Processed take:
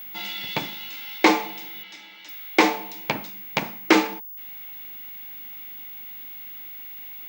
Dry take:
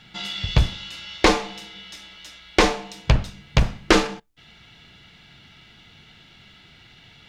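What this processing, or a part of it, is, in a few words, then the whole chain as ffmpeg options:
old television with a line whistle: -filter_complex "[0:a]highpass=f=200:w=0.5412,highpass=f=200:w=1.3066,equalizer=f=310:t=q:w=4:g=7,equalizer=f=870:t=q:w=4:g=8,equalizer=f=2.2k:t=q:w=4:g=8,lowpass=f=8.8k:w=0.5412,lowpass=f=8.8k:w=1.3066,aeval=exprs='val(0)+0.0251*sin(2*PI*15625*n/s)':c=same,asettb=1/sr,asplit=3[a][b][c];[a]atrim=end=1.834[d];[b]atrim=start=1.83:end=2.29,asetpts=PTS-STARTPTS,afade=t=in:d=0.004:c=qsin,afade=t=out:st=0.456:d=0.004:c=qsin,lowpass=7k[e];[c]atrim=start=2.286[f];[d][e]acrossfade=d=0.004:c1=hsin:c2=qsin[g];[g][f]acrossfade=d=0.004:c1=qsin:c2=hsin,volume=-4dB"

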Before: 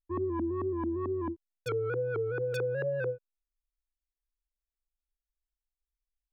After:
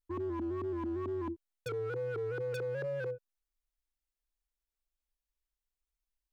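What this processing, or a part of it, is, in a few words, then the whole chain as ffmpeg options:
limiter into clipper: -af "alimiter=level_in=6dB:limit=-24dB:level=0:latency=1:release=77,volume=-6dB,asoftclip=type=hard:threshold=-32dB"

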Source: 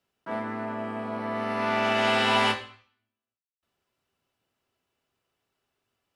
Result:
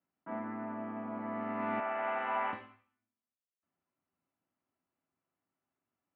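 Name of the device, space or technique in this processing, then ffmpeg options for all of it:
bass cabinet: -filter_complex "[0:a]highpass=87,equalizer=f=120:t=q:w=4:g=-5,equalizer=f=170:t=q:w=4:g=4,equalizer=f=280:t=q:w=4:g=7,equalizer=f=440:t=q:w=4:g=-9,equalizer=f=1.6k:t=q:w=4:g=-4,lowpass=f=2.1k:w=0.5412,lowpass=f=2.1k:w=1.3066,asettb=1/sr,asplit=3[a][b][c];[a]atrim=end=1.804[d];[b]atrim=start=1.8:end=2.53,asetpts=PTS-STARTPTS,afade=t=in:d=0.004:c=qsin,afade=t=out:st=0.726:d=0.004:c=qsin,acrossover=split=440 2600:gain=0.112 1 0.1[e][f][g];[e][f][g]amix=inputs=3:normalize=0[h];[c]atrim=start=2.526[i];[d][h]acrossfade=d=0.004:c1=hsin:c2=qsin[j];[j][i]acrossfade=d=0.004:c1=qsin:c2=hsin,volume=-7.5dB"

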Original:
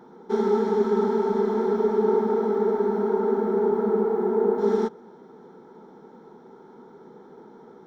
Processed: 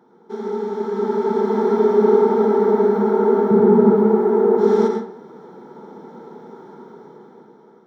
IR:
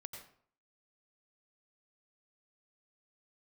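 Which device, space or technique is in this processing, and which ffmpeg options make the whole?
far laptop microphone: -filter_complex "[0:a]asettb=1/sr,asplit=3[a][b][c];[a]atrim=end=3.514[d];[b]atrim=start=3.51:end=3.94,asetpts=PTS-STARTPTS,afade=t=in:d=0.004:c=qsin,afade=t=out:st=0.426:d=0.004:c=qsin,bass=f=250:g=14,treble=f=4k:g=-2[e];[c]atrim=start=3.936[f];[d][e]acrossfade=d=0.004:c1=hsin:c2=qsin[g];[g][f]acrossfade=d=0.004:c1=qsin:c2=hsin[h];[1:a]atrim=start_sample=2205[i];[h][i]afir=irnorm=-1:irlink=0,highpass=110,dynaudnorm=f=290:g=9:m=14dB"

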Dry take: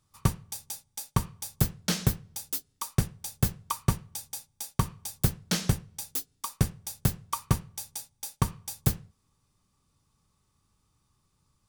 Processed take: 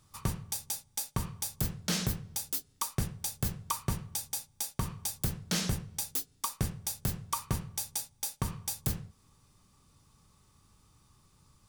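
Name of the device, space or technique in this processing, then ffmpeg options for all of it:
stacked limiters: -af "alimiter=limit=-14.5dB:level=0:latency=1:release=113,alimiter=limit=-21dB:level=0:latency=1:release=38,alimiter=level_in=3dB:limit=-24dB:level=0:latency=1:release=340,volume=-3dB,volume=8dB"

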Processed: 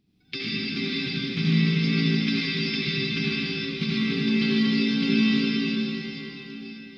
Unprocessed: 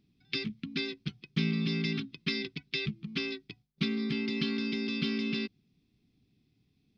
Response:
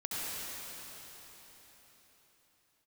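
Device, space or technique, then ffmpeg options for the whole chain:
cathedral: -filter_complex "[1:a]atrim=start_sample=2205[a];[0:a][a]afir=irnorm=-1:irlink=0,volume=4dB"

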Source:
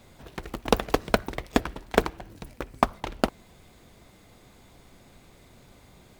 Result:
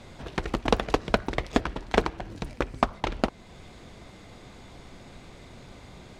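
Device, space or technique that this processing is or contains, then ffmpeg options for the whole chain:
soft clipper into limiter: -af "asoftclip=type=tanh:threshold=-6dB,alimiter=limit=-14.5dB:level=0:latency=1:release=349,lowpass=6.5k,volume=7dB"

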